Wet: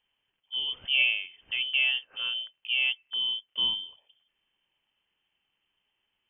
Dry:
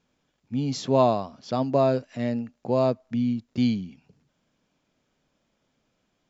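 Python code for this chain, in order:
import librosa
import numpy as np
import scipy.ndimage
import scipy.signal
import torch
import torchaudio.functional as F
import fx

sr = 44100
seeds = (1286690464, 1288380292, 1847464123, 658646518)

y = scipy.signal.sosfilt(scipy.signal.butter(2, 100.0, 'highpass', fs=sr, output='sos'), x)
y = fx.freq_invert(y, sr, carrier_hz=3300)
y = F.gain(torch.from_numpy(y), -5.0).numpy()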